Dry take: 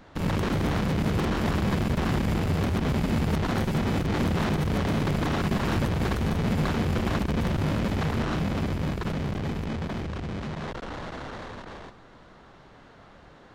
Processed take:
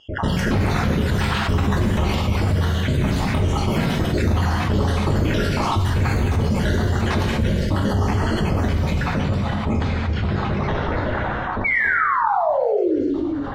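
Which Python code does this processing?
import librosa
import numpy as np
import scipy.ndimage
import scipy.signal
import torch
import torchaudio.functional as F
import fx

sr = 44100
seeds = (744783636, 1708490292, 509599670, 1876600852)

y = fx.spec_dropout(x, sr, seeds[0], share_pct=64)
y = fx.dereverb_blind(y, sr, rt60_s=1.7)
y = fx.spec_paint(y, sr, seeds[1], shape='fall', start_s=11.64, length_s=1.38, low_hz=270.0, high_hz=2300.0, level_db=-29.0)
y = fx.env_lowpass(y, sr, base_hz=730.0, full_db=-29.0)
y = fx.peak_eq(y, sr, hz=83.0, db=7.0, octaves=0.42)
y = fx.hum_notches(y, sr, base_hz=60, count=5)
y = fx.rev_gated(y, sr, seeds[2], gate_ms=460, shape='falling', drr_db=-2.0)
y = fx.env_flatten(y, sr, amount_pct=70)
y = F.gain(torch.from_numpy(y), 1.5).numpy()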